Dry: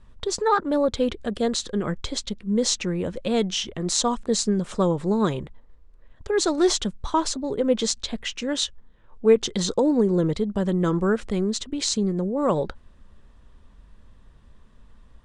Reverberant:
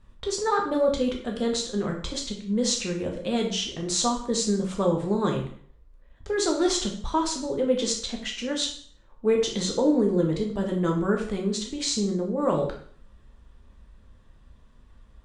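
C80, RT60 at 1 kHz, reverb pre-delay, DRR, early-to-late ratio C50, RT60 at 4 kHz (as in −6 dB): 10.5 dB, 0.55 s, 5 ms, 0.5 dB, 7.0 dB, 0.50 s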